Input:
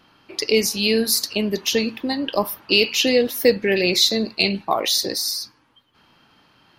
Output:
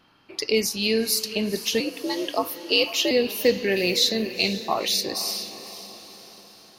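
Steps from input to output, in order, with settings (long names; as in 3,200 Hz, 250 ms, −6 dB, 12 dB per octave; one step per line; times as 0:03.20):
feedback delay with all-pass diffusion 484 ms, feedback 50%, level −13 dB
0:01.80–0:03.11: frequency shifter +70 Hz
level −4 dB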